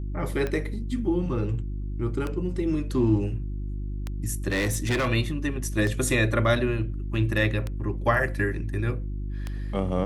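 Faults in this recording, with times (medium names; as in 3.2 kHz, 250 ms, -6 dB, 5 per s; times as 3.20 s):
hum 50 Hz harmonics 7 -31 dBFS
tick 33 1/3 rpm -17 dBFS
4.48–5.09 s: clipped -21 dBFS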